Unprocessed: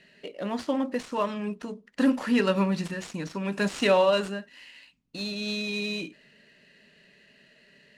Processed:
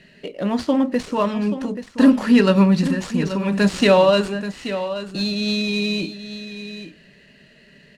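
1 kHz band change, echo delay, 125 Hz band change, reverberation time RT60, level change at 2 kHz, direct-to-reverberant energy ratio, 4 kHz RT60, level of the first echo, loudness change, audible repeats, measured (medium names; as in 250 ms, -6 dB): +6.5 dB, 831 ms, +11.5 dB, no reverb, +6.0 dB, no reverb, no reverb, -11.5 dB, +8.5 dB, 1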